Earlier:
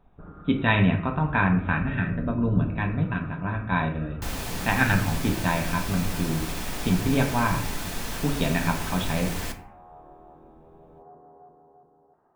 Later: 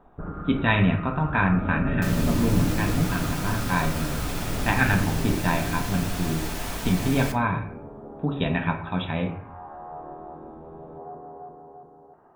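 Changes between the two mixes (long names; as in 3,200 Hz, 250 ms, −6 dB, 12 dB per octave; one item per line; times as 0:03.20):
first sound +10.0 dB
second sound: entry −2.20 s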